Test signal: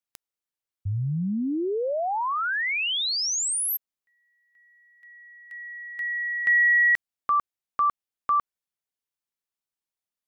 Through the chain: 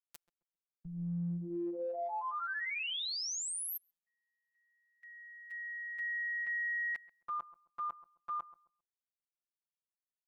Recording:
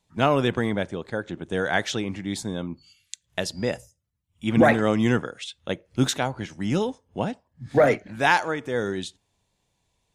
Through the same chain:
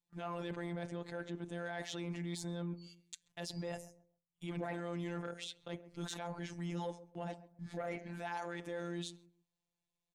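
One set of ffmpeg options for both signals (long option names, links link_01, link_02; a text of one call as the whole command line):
ffmpeg -i in.wav -filter_complex "[0:a]afftfilt=real='hypot(re,im)*cos(PI*b)':imag='0':win_size=1024:overlap=0.75,agate=range=-14dB:threshold=-55dB:ratio=16:release=136:detection=rms,adynamicequalizer=threshold=0.00891:dfrequency=770:dqfactor=1.5:tfrequency=770:tqfactor=1.5:attack=5:release=100:ratio=0.375:range=2:mode=boostabove:tftype=bell,areverse,acompressor=threshold=-33dB:ratio=8:attack=0.66:release=56:knee=6:detection=peak,areverse,asplit=2[link_01][link_02];[link_02]adelay=133,lowpass=frequency=840:poles=1,volume=-14.5dB,asplit=2[link_03][link_04];[link_04]adelay=133,lowpass=frequency=840:poles=1,volume=0.31,asplit=2[link_05][link_06];[link_06]adelay=133,lowpass=frequency=840:poles=1,volume=0.31[link_07];[link_01][link_03][link_05][link_07]amix=inputs=4:normalize=0,volume=-2dB" out.wav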